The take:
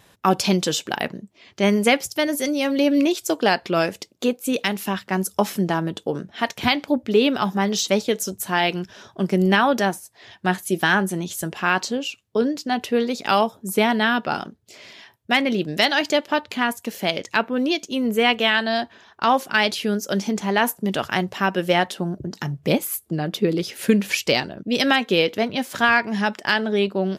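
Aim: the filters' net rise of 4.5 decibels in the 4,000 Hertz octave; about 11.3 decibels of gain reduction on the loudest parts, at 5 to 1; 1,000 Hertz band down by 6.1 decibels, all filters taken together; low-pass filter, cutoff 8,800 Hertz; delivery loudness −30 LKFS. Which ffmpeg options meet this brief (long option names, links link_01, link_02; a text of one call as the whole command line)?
ffmpeg -i in.wav -af "lowpass=8800,equalizer=frequency=1000:width_type=o:gain=-9,equalizer=frequency=4000:width_type=o:gain=7,acompressor=threshold=-25dB:ratio=5,volume=-1dB" out.wav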